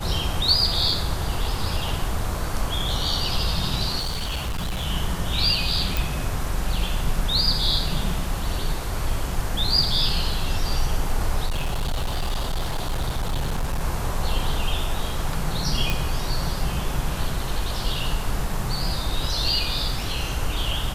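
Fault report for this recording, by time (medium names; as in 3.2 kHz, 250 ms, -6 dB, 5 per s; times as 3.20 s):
3.99–4.86 s: clipped -23 dBFS
5.97 s: pop
11.46–13.84 s: clipped -20.5 dBFS
15.90 s: pop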